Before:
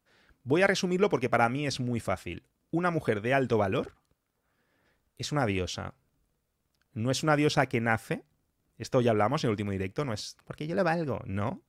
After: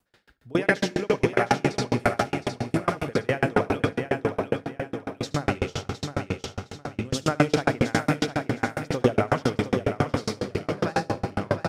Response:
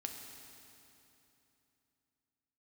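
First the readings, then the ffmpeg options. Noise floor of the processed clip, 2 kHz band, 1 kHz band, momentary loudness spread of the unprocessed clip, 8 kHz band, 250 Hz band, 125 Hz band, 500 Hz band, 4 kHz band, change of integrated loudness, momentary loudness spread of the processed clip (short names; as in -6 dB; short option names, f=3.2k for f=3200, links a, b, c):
-53 dBFS, +3.5 dB, +3.5 dB, 14 LU, +3.0 dB, +4.5 dB, +4.0 dB, +3.5 dB, +3.0 dB, +2.5 dB, 9 LU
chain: -filter_complex "[0:a]aecho=1:1:713|1426|2139|2852|3565|4278:0.668|0.307|0.141|0.0651|0.0299|0.0138,asplit=2[a][b];[1:a]atrim=start_sample=2205,adelay=75[c];[b][c]afir=irnorm=-1:irlink=0,volume=0dB[d];[a][d]amix=inputs=2:normalize=0,aeval=exprs='val(0)*pow(10,-34*if(lt(mod(7.3*n/s,1),2*abs(7.3)/1000),1-mod(7.3*n/s,1)/(2*abs(7.3)/1000),(mod(7.3*n/s,1)-2*abs(7.3)/1000)/(1-2*abs(7.3)/1000))/20)':c=same,volume=8.5dB"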